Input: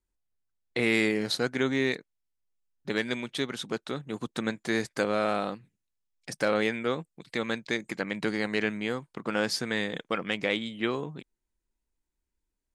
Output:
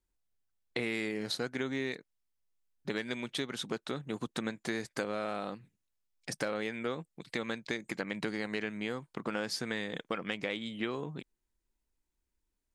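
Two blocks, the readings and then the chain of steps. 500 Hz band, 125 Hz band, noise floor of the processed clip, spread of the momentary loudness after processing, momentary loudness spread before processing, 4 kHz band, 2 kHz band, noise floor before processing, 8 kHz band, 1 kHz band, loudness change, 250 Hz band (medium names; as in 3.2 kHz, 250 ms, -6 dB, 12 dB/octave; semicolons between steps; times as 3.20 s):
-7.5 dB, -5.5 dB, -84 dBFS, 6 LU, 9 LU, -6.0 dB, -7.0 dB, -84 dBFS, -4.5 dB, -7.0 dB, -7.0 dB, -6.5 dB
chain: compression 4:1, threshold -32 dBFS, peak gain reduction 10.5 dB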